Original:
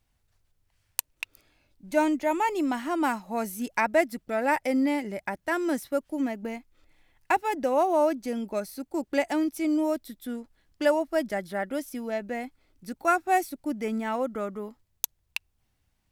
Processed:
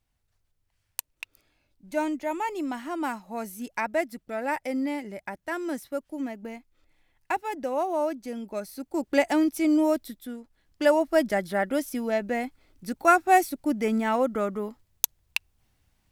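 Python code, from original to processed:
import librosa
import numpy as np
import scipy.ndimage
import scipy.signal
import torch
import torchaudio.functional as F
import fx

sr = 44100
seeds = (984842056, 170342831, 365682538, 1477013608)

y = fx.gain(x, sr, db=fx.line((8.45, -4.0), (9.18, 3.5), (10.05, 3.5), (10.37, -4.5), (11.07, 4.5)))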